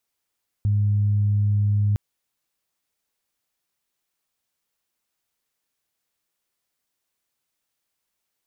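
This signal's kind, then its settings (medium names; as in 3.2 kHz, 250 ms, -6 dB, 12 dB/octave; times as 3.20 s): steady additive tone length 1.31 s, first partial 103 Hz, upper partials -19.5 dB, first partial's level -17 dB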